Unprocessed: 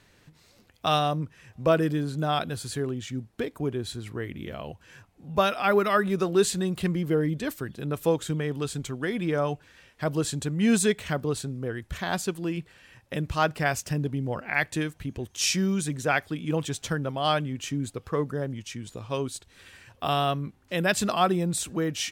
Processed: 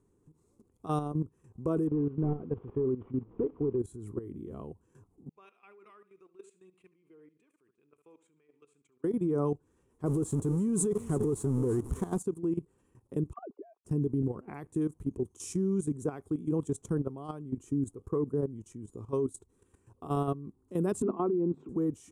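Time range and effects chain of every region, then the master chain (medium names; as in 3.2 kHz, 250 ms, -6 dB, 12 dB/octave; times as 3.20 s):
1.87–3.79 s: one-bit delta coder 16 kbps, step -41.5 dBFS + peaking EQ 480 Hz +6.5 dB 0.23 oct
5.29–9.04 s: band-pass filter 2.4 kHz, Q 6.1 + feedback delay 70 ms, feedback 32%, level -12.5 dB
10.06–12.19 s: jump at every zero crossing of -27 dBFS + delay 333 ms -16.5 dB
13.33–13.85 s: formants replaced by sine waves + auto-wah 370–2000 Hz, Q 2.4, down, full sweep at -26.5 dBFS
21.02–21.69 s: cabinet simulation 190–2500 Hz, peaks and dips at 260 Hz +9 dB, 370 Hz +6 dB, 950 Hz +3 dB, 1.7 kHz -4 dB + hum notches 50/100/150/200/250 Hz
whole clip: FFT filter 160 Hz 0 dB, 410 Hz +7 dB, 590 Hz -11 dB, 1.1 kHz -4 dB, 1.7 kHz -23 dB, 4.7 kHz -25 dB, 7 kHz -7 dB, 10 kHz -2 dB, 15 kHz -23 dB; peak limiter -18 dBFS; level held to a coarse grid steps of 14 dB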